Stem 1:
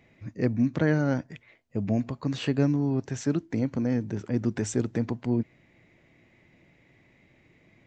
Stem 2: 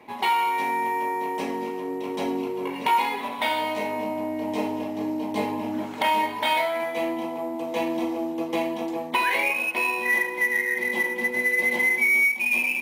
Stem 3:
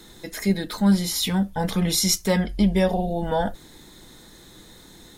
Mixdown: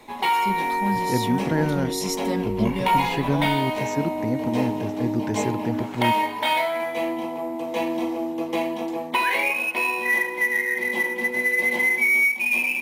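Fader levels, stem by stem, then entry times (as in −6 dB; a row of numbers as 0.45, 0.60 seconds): +0.5, +1.0, −8.5 decibels; 0.70, 0.00, 0.00 seconds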